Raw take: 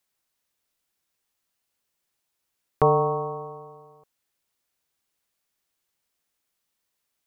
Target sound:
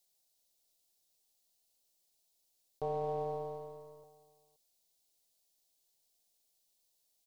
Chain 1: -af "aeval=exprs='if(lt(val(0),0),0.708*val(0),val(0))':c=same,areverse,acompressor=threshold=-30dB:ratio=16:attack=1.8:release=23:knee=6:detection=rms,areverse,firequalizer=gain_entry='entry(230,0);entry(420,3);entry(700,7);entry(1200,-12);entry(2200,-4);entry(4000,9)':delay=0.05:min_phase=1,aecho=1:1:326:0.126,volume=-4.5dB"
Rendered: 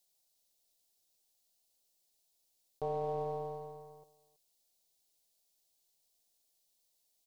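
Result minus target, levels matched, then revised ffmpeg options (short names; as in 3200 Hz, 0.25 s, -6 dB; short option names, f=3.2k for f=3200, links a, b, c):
echo 0.199 s early
-af "aeval=exprs='if(lt(val(0),0),0.708*val(0),val(0))':c=same,areverse,acompressor=threshold=-30dB:ratio=16:attack=1.8:release=23:knee=6:detection=rms,areverse,firequalizer=gain_entry='entry(230,0);entry(420,3);entry(700,7);entry(1200,-12);entry(2200,-4);entry(4000,9)':delay=0.05:min_phase=1,aecho=1:1:525:0.126,volume=-4.5dB"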